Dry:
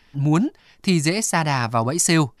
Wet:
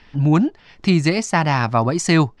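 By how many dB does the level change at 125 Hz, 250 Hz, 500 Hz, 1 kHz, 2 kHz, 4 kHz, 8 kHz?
+3.5, +3.0, +3.0, +3.0, +2.0, -0.5, -7.0 dB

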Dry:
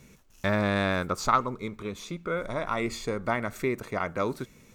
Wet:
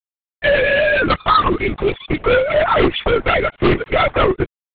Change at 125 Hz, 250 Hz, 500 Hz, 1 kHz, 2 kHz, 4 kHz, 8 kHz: +9.5 dB, +10.0 dB, +15.0 dB, +11.5 dB, +15.0 dB, +15.5 dB, under -30 dB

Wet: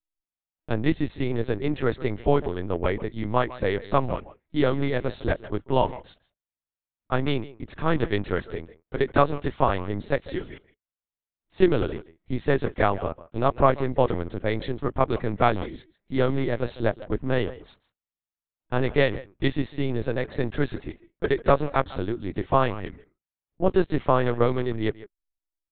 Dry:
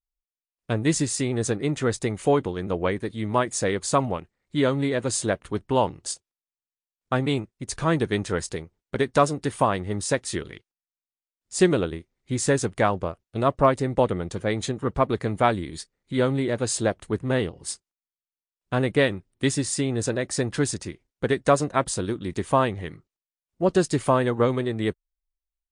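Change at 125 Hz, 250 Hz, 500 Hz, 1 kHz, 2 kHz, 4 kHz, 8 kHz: -1.0 dB, -1.5 dB, -0.5 dB, -0.5 dB, -1.0 dB, -4.5 dB, under -40 dB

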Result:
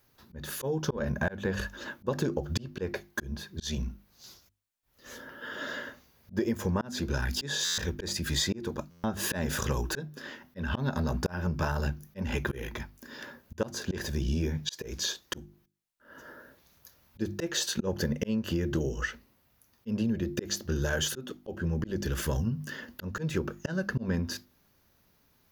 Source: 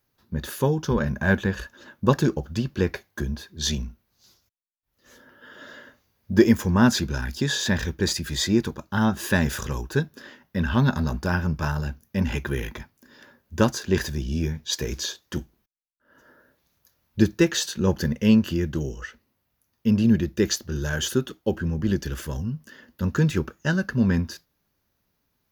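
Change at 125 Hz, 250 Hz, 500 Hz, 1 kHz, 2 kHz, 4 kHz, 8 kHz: -8.0, -10.0, -7.0, -7.5, -6.0, -4.0, -4.0 dB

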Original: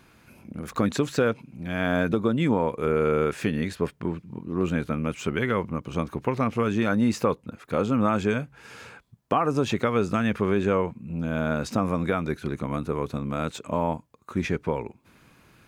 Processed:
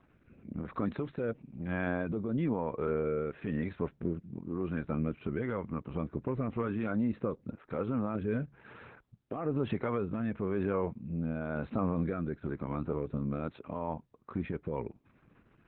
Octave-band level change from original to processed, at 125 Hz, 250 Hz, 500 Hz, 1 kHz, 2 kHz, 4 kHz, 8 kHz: -7.0 dB, -7.5 dB, -9.0 dB, -12.0 dB, -12.0 dB, under -15 dB, under -35 dB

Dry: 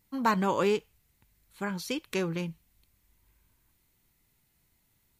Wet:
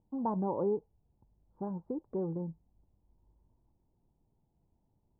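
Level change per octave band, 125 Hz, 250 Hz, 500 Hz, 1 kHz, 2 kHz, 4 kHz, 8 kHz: -4.0 dB, -4.0 dB, -4.5 dB, -8.5 dB, under -35 dB, under -40 dB, under -35 dB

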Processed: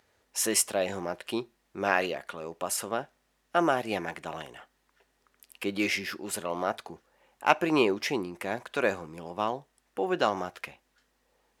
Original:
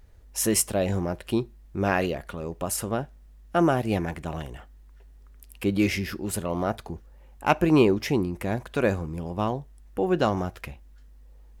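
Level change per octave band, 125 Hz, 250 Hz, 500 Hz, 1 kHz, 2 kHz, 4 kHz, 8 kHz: -15.0, -7.5, -3.5, -0.5, +1.0, +1.0, -1.5 dB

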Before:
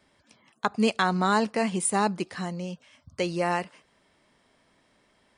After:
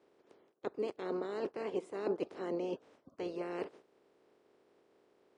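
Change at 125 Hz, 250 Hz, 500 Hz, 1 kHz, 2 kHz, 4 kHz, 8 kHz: -20.5 dB, -13.0 dB, -7.0 dB, -19.5 dB, -20.0 dB, -20.0 dB, under -30 dB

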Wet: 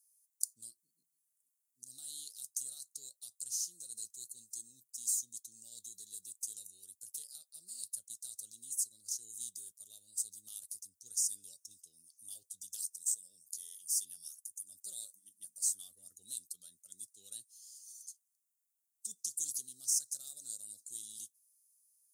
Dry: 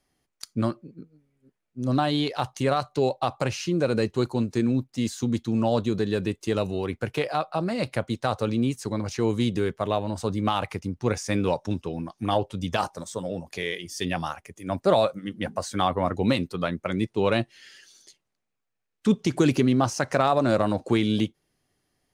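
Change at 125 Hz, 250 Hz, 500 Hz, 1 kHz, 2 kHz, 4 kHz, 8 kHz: under -40 dB, under -40 dB, under -40 dB, under -40 dB, under -40 dB, -15.5 dB, +6.5 dB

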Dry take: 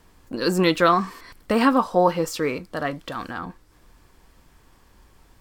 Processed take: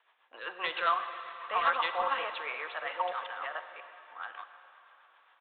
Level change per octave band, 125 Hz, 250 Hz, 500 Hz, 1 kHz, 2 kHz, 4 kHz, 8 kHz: under -35 dB, -34.0 dB, -16.5 dB, -7.0 dB, -4.5 dB, -7.5 dB, under -40 dB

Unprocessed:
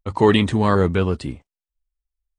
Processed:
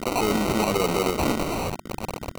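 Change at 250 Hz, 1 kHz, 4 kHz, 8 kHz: -5.0, -1.5, -1.0, +12.5 dB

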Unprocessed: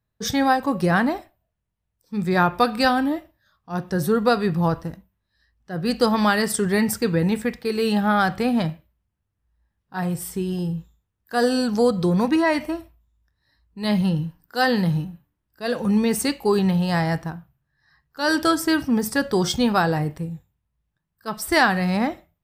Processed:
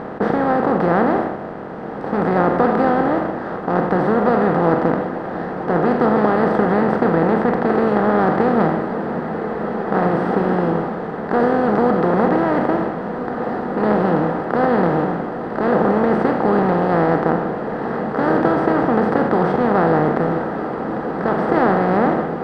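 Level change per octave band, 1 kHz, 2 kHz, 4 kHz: +6.5 dB, +1.0 dB, under -10 dB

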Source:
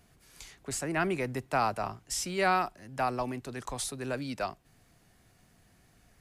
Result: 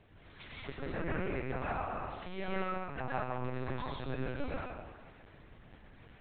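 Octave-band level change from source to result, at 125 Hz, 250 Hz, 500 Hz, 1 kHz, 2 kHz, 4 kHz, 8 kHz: -1.0 dB, -4.5 dB, -5.5 dB, -8.0 dB, -6.5 dB, -10.0 dB, under -40 dB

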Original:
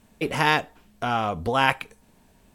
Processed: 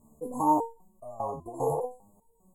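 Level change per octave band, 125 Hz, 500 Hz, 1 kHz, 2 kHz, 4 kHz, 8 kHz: -10.0 dB, -3.0 dB, -4.5 dB, under -40 dB, under -40 dB, -5.5 dB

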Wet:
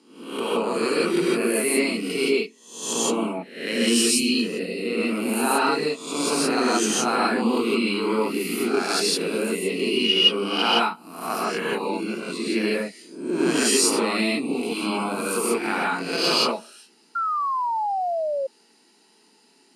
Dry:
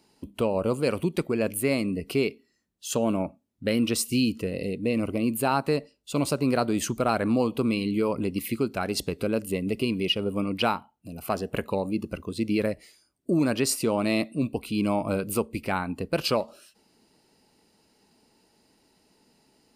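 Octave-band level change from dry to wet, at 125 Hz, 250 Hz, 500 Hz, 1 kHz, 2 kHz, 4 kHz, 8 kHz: -7.0, +2.0, +3.5, +7.0, +8.0, +11.0, +9.5 dB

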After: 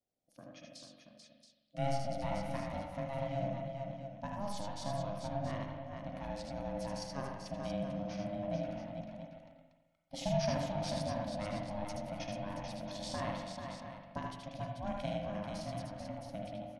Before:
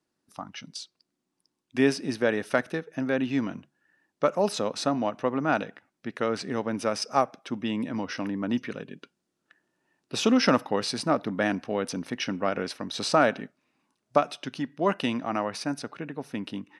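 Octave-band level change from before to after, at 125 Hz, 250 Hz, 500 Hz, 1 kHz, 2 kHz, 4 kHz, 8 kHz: -2.5, -13.0, -11.0, -11.0, -17.0, -13.0, -12.0 dB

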